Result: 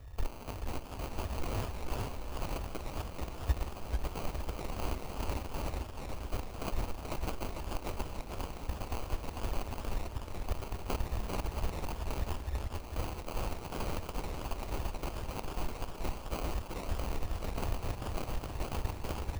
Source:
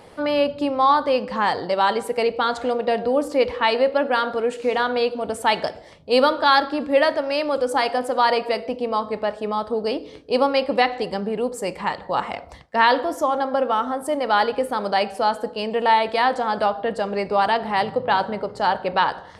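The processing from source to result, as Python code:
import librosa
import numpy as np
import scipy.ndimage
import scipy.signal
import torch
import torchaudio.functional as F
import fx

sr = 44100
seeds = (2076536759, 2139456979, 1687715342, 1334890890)

p1 = fx.halfwave_hold(x, sr)
p2 = fx.low_shelf(p1, sr, hz=86.0, db=9.0)
p3 = p2 + fx.echo_thinned(p2, sr, ms=103, feedback_pct=57, hz=750.0, wet_db=-11.0, dry=0)
p4 = fx.over_compress(p3, sr, threshold_db=-20.0, ratio=-1.0)
p5 = p4 + 0.6 * np.pad(p4, (int(1.0 * sr / 1000.0), 0))[:len(p4)]
p6 = fx.level_steps(p5, sr, step_db=10)
p7 = scipy.signal.sosfilt(scipy.signal.cheby2(4, 70, [380.0, 5800.0], 'bandstop', fs=sr, output='sos'), p6)
p8 = fx.sample_hold(p7, sr, seeds[0], rate_hz=1800.0, jitter_pct=0)
p9 = fx.echo_warbled(p8, sr, ms=440, feedback_pct=41, rate_hz=2.8, cents=209, wet_db=-4)
y = F.gain(torch.from_numpy(p9), -1.0).numpy()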